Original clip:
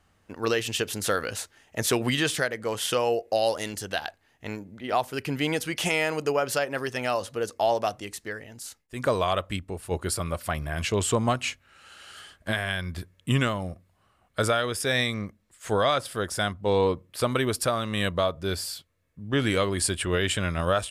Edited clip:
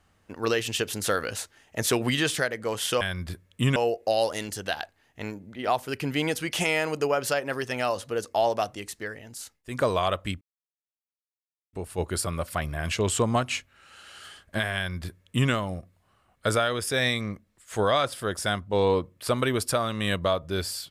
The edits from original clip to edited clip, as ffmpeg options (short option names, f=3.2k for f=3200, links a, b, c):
-filter_complex "[0:a]asplit=4[a][b][c][d];[a]atrim=end=3.012[e];[b]atrim=start=12.688:end=13.442[f];[c]atrim=start=3.008:end=9.66,asetpts=PTS-STARTPTS,afade=t=out:st=6.648:d=0.004:c=hsin,apad=pad_dur=1.32[g];[d]atrim=start=9.66,asetpts=PTS-STARTPTS,afade=t=in:d=0.004:c=hsin[h];[e][f]acrossfade=d=0.004:c1=hsin:c2=hsin[i];[g][h]concat=n=2:v=0:a=1[j];[i][j]acrossfade=d=0.004:c1=hsin:c2=hsin"